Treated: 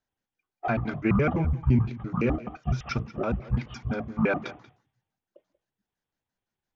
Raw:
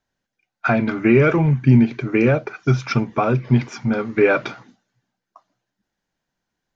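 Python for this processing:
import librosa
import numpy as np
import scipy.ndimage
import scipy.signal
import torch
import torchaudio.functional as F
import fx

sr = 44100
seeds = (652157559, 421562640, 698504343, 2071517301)

y = fx.pitch_trill(x, sr, semitones=-11.5, every_ms=85)
y = y + 10.0 ** (-18.5 / 20.0) * np.pad(y, (int(186 * sr / 1000.0), 0))[:len(y)]
y = y * librosa.db_to_amplitude(-8.5)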